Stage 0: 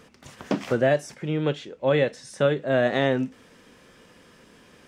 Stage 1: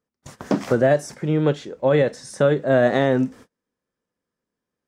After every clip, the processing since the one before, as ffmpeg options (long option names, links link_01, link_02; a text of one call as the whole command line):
ffmpeg -i in.wav -af "agate=range=-36dB:threshold=-46dB:ratio=16:detection=peak,equalizer=frequency=2800:width=1.4:gain=-8.5,alimiter=level_in=13dB:limit=-1dB:release=50:level=0:latency=1,volume=-7dB" out.wav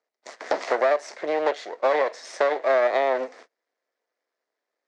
ffmpeg -i in.wav -filter_complex "[0:a]aeval=exprs='max(val(0),0)':channel_layout=same,highpass=frequency=370:width=0.5412,highpass=frequency=370:width=1.3066,equalizer=frequency=650:width_type=q:width=4:gain=7,equalizer=frequency=2000:width_type=q:width=4:gain=7,equalizer=frequency=3000:width_type=q:width=4:gain=-3,equalizer=frequency=4300:width_type=q:width=4:gain=3,lowpass=frequency=6700:width=0.5412,lowpass=frequency=6700:width=1.3066,acrossover=split=480|1300[link_01][link_02][link_03];[link_01]acompressor=threshold=-40dB:ratio=4[link_04];[link_02]acompressor=threshold=-25dB:ratio=4[link_05];[link_03]acompressor=threshold=-37dB:ratio=4[link_06];[link_04][link_05][link_06]amix=inputs=3:normalize=0,volume=5dB" out.wav